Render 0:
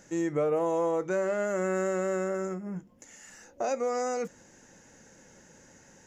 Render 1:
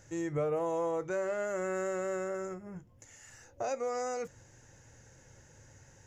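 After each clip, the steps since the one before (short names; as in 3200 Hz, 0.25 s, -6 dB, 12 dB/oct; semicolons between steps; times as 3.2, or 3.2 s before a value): resonant low shelf 150 Hz +8.5 dB, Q 3; gain -4 dB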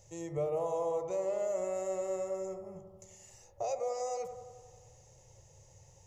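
fixed phaser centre 640 Hz, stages 4; analogue delay 89 ms, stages 1024, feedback 68%, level -9 dB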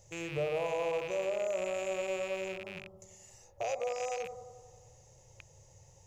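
rattling part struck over -52 dBFS, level -32 dBFS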